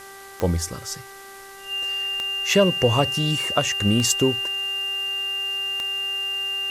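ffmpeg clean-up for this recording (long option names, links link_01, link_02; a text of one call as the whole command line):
ffmpeg -i in.wav -af "adeclick=threshold=4,bandreject=frequency=391.8:width_type=h:width=4,bandreject=frequency=783.6:width_type=h:width=4,bandreject=frequency=1175.4:width_type=h:width=4,bandreject=frequency=1567.2:width_type=h:width=4,bandreject=frequency=1959:width_type=h:width=4,bandreject=frequency=2800:width=30,afftdn=noise_reduction=26:noise_floor=-41" out.wav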